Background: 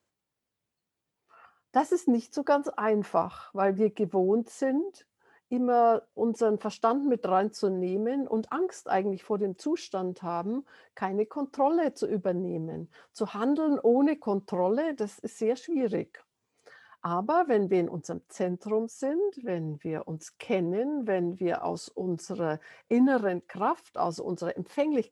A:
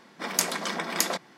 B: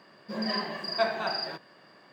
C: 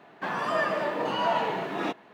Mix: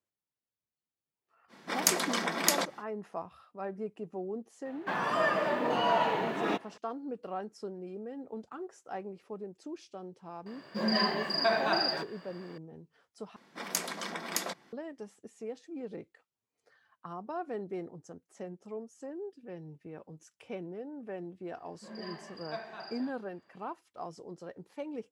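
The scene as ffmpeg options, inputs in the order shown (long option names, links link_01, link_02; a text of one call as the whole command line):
ffmpeg -i bed.wav -i cue0.wav -i cue1.wav -i cue2.wav -filter_complex "[1:a]asplit=2[link_01][link_02];[2:a]asplit=2[link_03][link_04];[0:a]volume=-13dB[link_05];[link_03]alimiter=level_in=18dB:limit=-1dB:release=50:level=0:latency=1[link_06];[link_04]highshelf=frequency=6300:gain=-6[link_07];[link_05]asplit=2[link_08][link_09];[link_08]atrim=end=13.364[link_10];[link_02]atrim=end=1.37,asetpts=PTS-STARTPTS,volume=-7.5dB[link_11];[link_09]atrim=start=14.726[link_12];[link_01]atrim=end=1.37,asetpts=PTS-STARTPTS,volume=-1dB,afade=type=in:duration=0.05,afade=type=out:start_time=1.32:duration=0.05,adelay=1480[link_13];[3:a]atrim=end=2.13,asetpts=PTS-STARTPTS,volume=-1.5dB,afade=type=in:duration=0.004:curve=hsin,afade=type=out:start_time=2.126:duration=0.004:curve=hsin,adelay=205065S[link_14];[link_06]atrim=end=2.12,asetpts=PTS-STARTPTS,volume=-15.5dB,afade=type=in:duration=0.004:curve=hsin,afade=type=out:start_time=2.116:duration=0.004:curve=hsin,adelay=10460[link_15];[link_07]atrim=end=2.12,asetpts=PTS-STARTPTS,volume=-13.5dB,afade=type=in:duration=0.004:curve=hsin,afade=type=out:start_time=2.116:duration=0.004:curve=hsin,adelay=21530[link_16];[link_10][link_11]acrossfade=duration=0.004:curve1=hsin:curve2=hsin[link_17];[link_17][link_12]acrossfade=duration=0.004:curve1=hsin:curve2=hsin[link_18];[link_18][link_13][link_14][link_15][link_16]amix=inputs=5:normalize=0" out.wav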